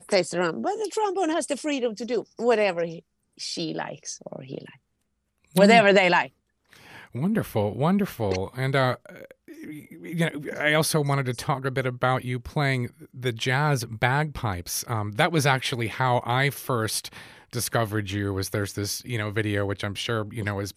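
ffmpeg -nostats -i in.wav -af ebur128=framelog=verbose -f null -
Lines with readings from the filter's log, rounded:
Integrated loudness:
  I:         -24.9 LUFS
  Threshold: -35.5 LUFS
Loudness range:
  LRA:         5.7 LU
  Threshold: -45.5 LUFS
  LRA low:   -28.1 LUFS
  LRA high:  -22.4 LUFS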